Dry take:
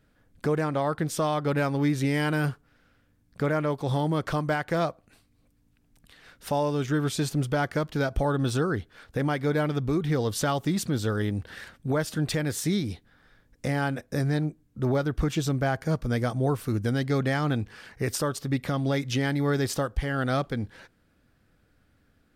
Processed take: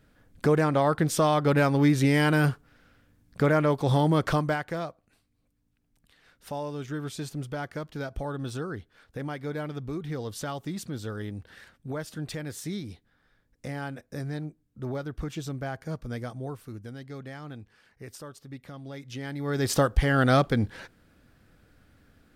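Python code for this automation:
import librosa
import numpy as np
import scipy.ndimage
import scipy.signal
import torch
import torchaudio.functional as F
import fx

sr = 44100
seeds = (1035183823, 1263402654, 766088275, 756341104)

y = fx.gain(x, sr, db=fx.line((4.32, 3.5), (4.85, -8.0), (16.16, -8.0), (16.94, -15.0), (18.89, -15.0), (19.43, -7.0), (19.78, 5.5)))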